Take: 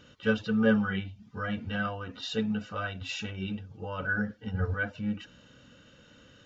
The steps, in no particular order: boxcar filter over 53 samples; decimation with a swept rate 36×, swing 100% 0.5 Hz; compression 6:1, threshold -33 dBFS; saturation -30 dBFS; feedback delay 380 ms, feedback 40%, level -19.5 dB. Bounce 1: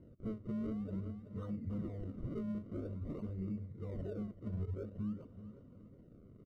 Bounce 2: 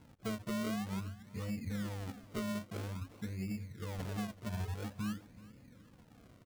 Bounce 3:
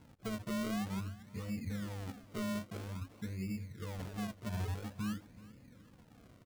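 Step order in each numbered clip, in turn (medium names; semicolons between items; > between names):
decimation with a swept rate > feedback delay > compression > saturation > boxcar filter; boxcar filter > decimation with a swept rate > compression > saturation > feedback delay; saturation > compression > boxcar filter > decimation with a swept rate > feedback delay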